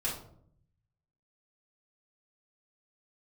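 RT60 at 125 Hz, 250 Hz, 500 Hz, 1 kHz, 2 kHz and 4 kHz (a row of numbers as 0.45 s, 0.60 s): 1.3 s, 0.90 s, 0.70 s, 0.55 s, 0.40 s, 0.35 s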